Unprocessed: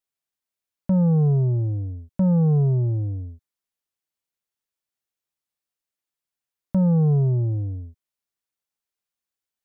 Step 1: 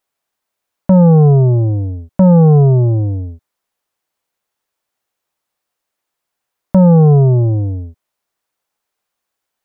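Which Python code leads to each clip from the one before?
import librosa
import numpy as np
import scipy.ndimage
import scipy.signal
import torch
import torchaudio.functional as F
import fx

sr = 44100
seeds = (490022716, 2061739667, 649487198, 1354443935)

y = fx.peak_eq(x, sr, hz=800.0, db=8.5, octaves=2.5)
y = y * librosa.db_to_amplitude(9.0)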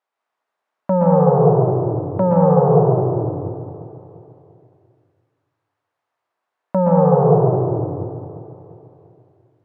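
y = fx.bandpass_q(x, sr, hz=950.0, q=0.8)
y = fx.echo_feedback(y, sr, ms=346, feedback_pct=49, wet_db=-15.0)
y = fx.rev_plate(y, sr, seeds[0], rt60_s=1.8, hf_ratio=0.4, predelay_ms=110, drr_db=-3.5)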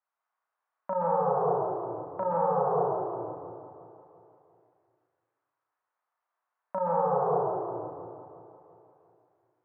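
y = fx.bandpass_q(x, sr, hz=1200.0, q=1.3)
y = fx.doubler(y, sr, ms=35.0, db=-2.5)
y = y * librosa.db_to_amplitude(-6.0)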